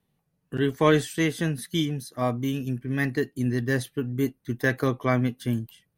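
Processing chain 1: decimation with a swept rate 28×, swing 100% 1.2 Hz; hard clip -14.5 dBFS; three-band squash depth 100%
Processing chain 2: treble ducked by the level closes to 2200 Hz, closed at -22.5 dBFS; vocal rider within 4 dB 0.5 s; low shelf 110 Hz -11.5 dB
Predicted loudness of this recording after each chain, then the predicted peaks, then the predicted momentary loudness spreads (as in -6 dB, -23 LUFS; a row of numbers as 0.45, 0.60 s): -26.0, -28.5 LUFS; -6.5, -11.0 dBFS; 4, 5 LU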